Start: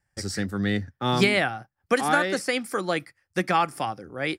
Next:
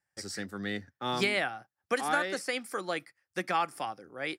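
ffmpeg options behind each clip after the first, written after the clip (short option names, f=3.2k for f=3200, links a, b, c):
-af "highpass=f=340:p=1,volume=-6dB"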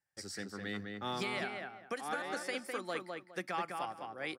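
-filter_complex "[0:a]alimiter=limit=-22dB:level=0:latency=1:release=339,asplit=2[a][b];[b]adelay=206,lowpass=f=2.6k:p=1,volume=-3.5dB,asplit=2[c][d];[d]adelay=206,lowpass=f=2.6k:p=1,volume=0.24,asplit=2[e][f];[f]adelay=206,lowpass=f=2.6k:p=1,volume=0.24[g];[a][c][e][g]amix=inputs=4:normalize=0,volume=-5dB"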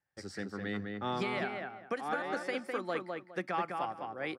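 -af "lowpass=f=1.8k:p=1,volume=4.5dB"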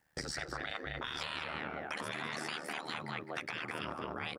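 -af "afftfilt=real='re*lt(hypot(re,im),0.0316)':imag='im*lt(hypot(re,im),0.0316)':win_size=1024:overlap=0.75,acompressor=threshold=-49dB:ratio=6,aeval=exprs='val(0)*sin(2*PI*38*n/s)':c=same,volume=15.5dB"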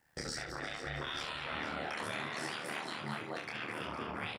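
-filter_complex "[0:a]asplit=2[a][b];[b]aecho=0:1:458:0.316[c];[a][c]amix=inputs=2:normalize=0,alimiter=level_in=6.5dB:limit=-24dB:level=0:latency=1:release=135,volume=-6.5dB,asplit=2[d][e];[e]aecho=0:1:28|70:0.668|0.447[f];[d][f]amix=inputs=2:normalize=0,volume=1dB"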